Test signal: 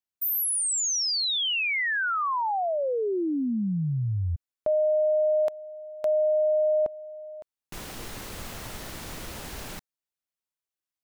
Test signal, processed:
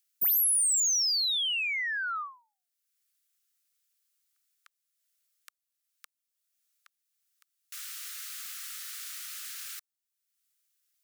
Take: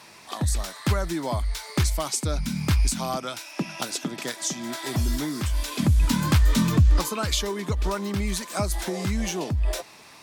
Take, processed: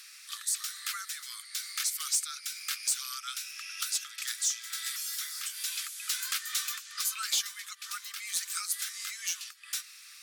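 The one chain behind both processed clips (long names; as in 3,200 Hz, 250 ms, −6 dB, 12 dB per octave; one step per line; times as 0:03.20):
Butterworth high-pass 1,200 Hz 96 dB per octave
high-shelf EQ 3,600 Hz +11.5 dB
upward compression 1.5 to 1, threshold −41 dBFS
soft clipping −13.5 dBFS
level −7 dB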